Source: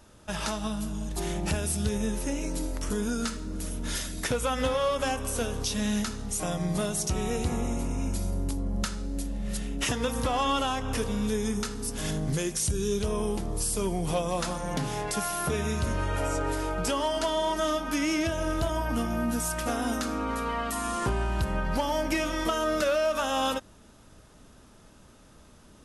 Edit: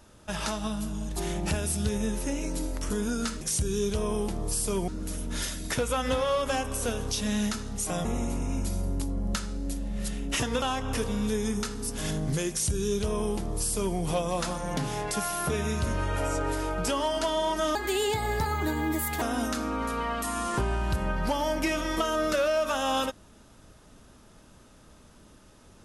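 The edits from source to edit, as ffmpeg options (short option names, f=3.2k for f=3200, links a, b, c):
-filter_complex "[0:a]asplit=7[a][b][c][d][e][f][g];[a]atrim=end=3.412[h];[b]atrim=start=12.498:end=13.972[i];[c]atrim=start=3.408:end=6.582[j];[d]atrim=start=7.538:end=10.112[k];[e]atrim=start=10.618:end=17.754[l];[f]atrim=start=17.75:end=19.7,asetpts=PTS-STARTPTS,asetrate=58653,aresample=44100[m];[g]atrim=start=19.696[n];[h][i]acrossfade=d=0.004:c1=hsin:c2=hsin[o];[o][j]acrossfade=d=0.004:c1=hsin:c2=hsin[p];[p][k]acrossfade=d=0.004:c1=hsin:c2=hsin[q];[q][l]acrossfade=d=0.004:c1=hsin:c2=hsin[r];[r][m]acrossfade=d=0.004:c1=hsin:c2=hsin[s];[s][n]acrossfade=d=0.004:c1=hsin:c2=hsin"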